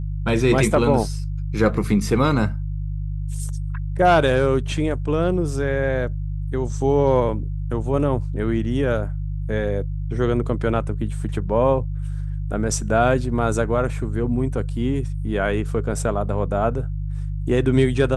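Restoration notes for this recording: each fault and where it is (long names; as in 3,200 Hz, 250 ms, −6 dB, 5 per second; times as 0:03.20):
mains hum 50 Hz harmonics 3 −26 dBFS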